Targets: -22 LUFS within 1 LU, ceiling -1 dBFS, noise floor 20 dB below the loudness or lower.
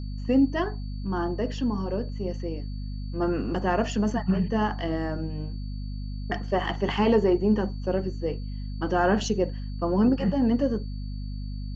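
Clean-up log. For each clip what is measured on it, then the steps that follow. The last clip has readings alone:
hum 50 Hz; harmonics up to 250 Hz; hum level -30 dBFS; steady tone 4500 Hz; tone level -53 dBFS; loudness -27.0 LUFS; peak -10.5 dBFS; loudness target -22.0 LUFS
-> notches 50/100/150/200/250 Hz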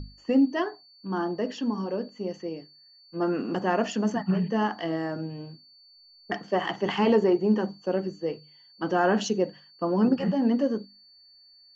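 hum none; steady tone 4500 Hz; tone level -53 dBFS
-> notch 4500 Hz, Q 30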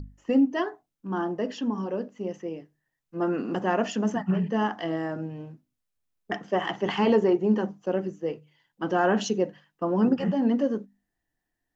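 steady tone none; loudness -27.0 LUFS; peak -11.0 dBFS; loudness target -22.0 LUFS
-> gain +5 dB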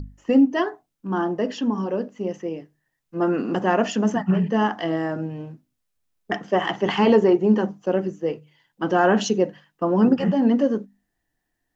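loudness -22.0 LUFS; peak -6.0 dBFS; noise floor -78 dBFS

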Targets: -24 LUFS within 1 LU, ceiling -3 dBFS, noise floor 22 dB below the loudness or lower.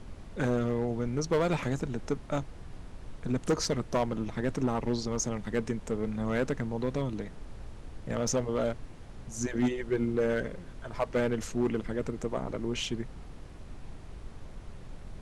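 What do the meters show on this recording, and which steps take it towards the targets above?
clipped 0.9%; flat tops at -21.0 dBFS; noise floor -46 dBFS; noise floor target -54 dBFS; loudness -31.5 LUFS; peak -21.0 dBFS; loudness target -24.0 LUFS
-> clip repair -21 dBFS; noise print and reduce 8 dB; gain +7.5 dB

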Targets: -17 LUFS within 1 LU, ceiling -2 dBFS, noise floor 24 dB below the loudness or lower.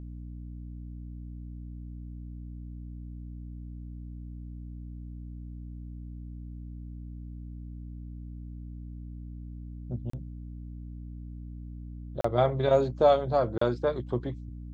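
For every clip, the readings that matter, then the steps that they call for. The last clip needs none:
dropouts 3; longest dropout 34 ms; hum 60 Hz; harmonics up to 300 Hz; hum level -38 dBFS; loudness -34.0 LUFS; peak -10.5 dBFS; loudness target -17.0 LUFS
-> interpolate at 10.1/12.21/13.58, 34 ms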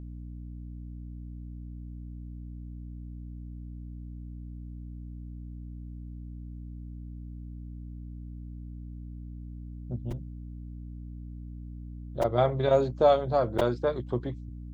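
dropouts 0; hum 60 Hz; harmonics up to 300 Hz; hum level -38 dBFS
-> notches 60/120/180/240/300 Hz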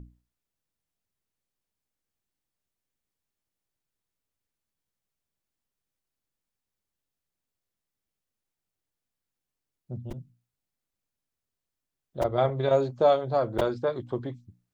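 hum none; loudness -26.5 LUFS; peak -10.5 dBFS; loudness target -17.0 LUFS
-> gain +9.5 dB; limiter -2 dBFS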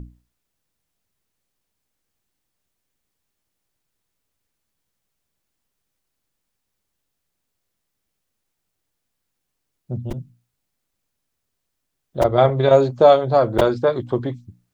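loudness -17.0 LUFS; peak -2.0 dBFS; noise floor -78 dBFS

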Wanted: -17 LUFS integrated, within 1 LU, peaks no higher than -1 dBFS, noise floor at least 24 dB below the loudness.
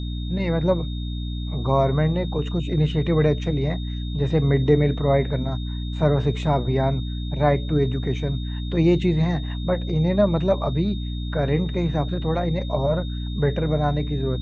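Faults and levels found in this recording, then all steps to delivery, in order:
hum 60 Hz; harmonics up to 300 Hz; hum level -26 dBFS; steady tone 3700 Hz; tone level -40 dBFS; loudness -23.0 LUFS; peak -5.0 dBFS; loudness target -17.0 LUFS
-> notches 60/120/180/240/300 Hz; notch 3700 Hz, Q 30; gain +6 dB; limiter -1 dBFS

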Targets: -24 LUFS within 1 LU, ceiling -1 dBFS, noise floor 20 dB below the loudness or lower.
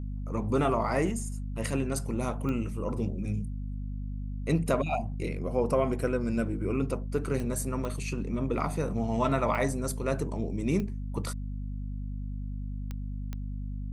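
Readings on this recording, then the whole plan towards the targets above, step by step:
clicks 7; hum 50 Hz; harmonics up to 250 Hz; hum level -32 dBFS; loudness -31.5 LUFS; peak -12.5 dBFS; loudness target -24.0 LUFS
-> de-click; notches 50/100/150/200/250 Hz; gain +7.5 dB

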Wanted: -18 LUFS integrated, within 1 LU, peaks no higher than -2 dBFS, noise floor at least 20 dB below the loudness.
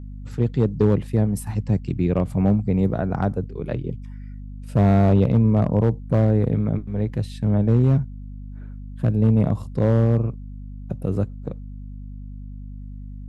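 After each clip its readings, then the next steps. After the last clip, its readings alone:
clipped 1.3%; flat tops at -10.0 dBFS; hum 50 Hz; harmonics up to 250 Hz; hum level -34 dBFS; loudness -21.0 LUFS; peak -10.0 dBFS; loudness target -18.0 LUFS
-> clip repair -10 dBFS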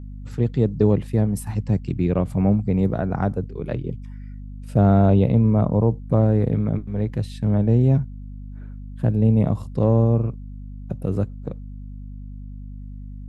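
clipped 0.0%; hum 50 Hz; harmonics up to 250 Hz; hum level -33 dBFS
-> de-hum 50 Hz, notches 5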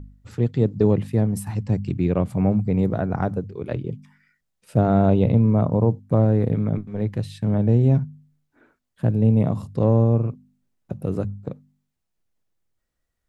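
hum none; loudness -21.5 LUFS; peak -6.0 dBFS; loudness target -18.0 LUFS
-> gain +3.5 dB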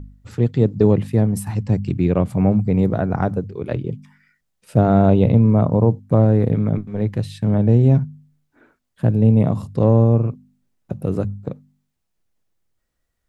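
loudness -18.0 LUFS; peak -2.5 dBFS; noise floor -74 dBFS

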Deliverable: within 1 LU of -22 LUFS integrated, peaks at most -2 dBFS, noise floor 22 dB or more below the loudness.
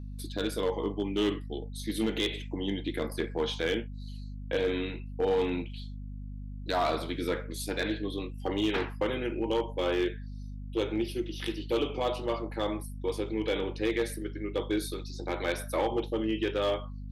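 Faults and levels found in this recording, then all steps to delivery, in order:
clipped 1.0%; flat tops at -21.5 dBFS; hum 50 Hz; harmonics up to 250 Hz; hum level -37 dBFS; loudness -32.0 LUFS; peak -21.5 dBFS; loudness target -22.0 LUFS
-> clip repair -21.5 dBFS; notches 50/100/150/200/250 Hz; gain +10 dB

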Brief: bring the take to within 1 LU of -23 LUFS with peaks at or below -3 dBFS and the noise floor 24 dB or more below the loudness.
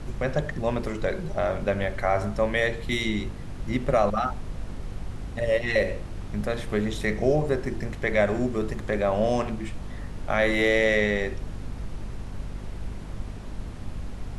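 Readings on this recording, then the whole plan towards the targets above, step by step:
hum 50 Hz; harmonics up to 250 Hz; hum level -36 dBFS; noise floor -37 dBFS; noise floor target -50 dBFS; loudness -26.0 LUFS; peak -9.5 dBFS; loudness target -23.0 LUFS
-> notches 50/100/150/200/250 Hz; noise print and reduce 13 dB; gain +3 dB

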